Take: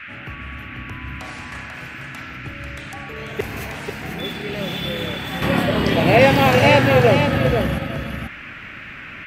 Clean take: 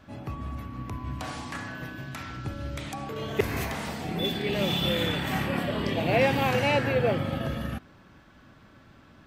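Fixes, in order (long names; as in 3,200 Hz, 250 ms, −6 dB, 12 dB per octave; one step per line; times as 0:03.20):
noise reduction from a noise print 18 dB
echo removal 491 ms −6.5 dB
level 0 dB, from 0:05.42 −10 dB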